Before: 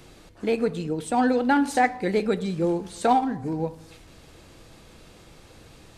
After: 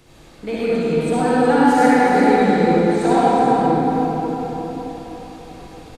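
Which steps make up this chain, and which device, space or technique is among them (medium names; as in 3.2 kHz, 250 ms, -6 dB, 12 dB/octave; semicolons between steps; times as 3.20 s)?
cave (delay 368 ms -8.5 dB; reverberation RT60 4.7 s, pre-delay 56 ms, DRR -10 dB); trim -3 dB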